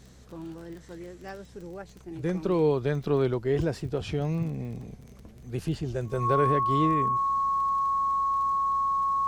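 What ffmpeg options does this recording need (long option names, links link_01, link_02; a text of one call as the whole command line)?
ffmpeg -i in.wav -af "adeclick=threshold=4,bandreject=frequency=63.7:width_type=h:width=4,bandreject=frequency=127.4:width_type=h:width=4,bandreject=frequency=191.1:width_type=h:width=4,bandreject=frequency=1100:width=30" out.wav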